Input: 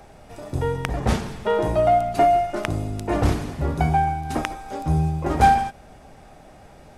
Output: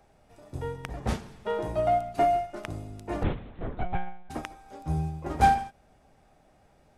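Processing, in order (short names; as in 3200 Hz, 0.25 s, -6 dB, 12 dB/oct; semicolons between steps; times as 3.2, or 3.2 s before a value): 3.23–4.3 monotone LPC vocoder at 8 kHz 180 Hz; upward expander 1.5:1, over -31 dBFS; gain -4.5 dB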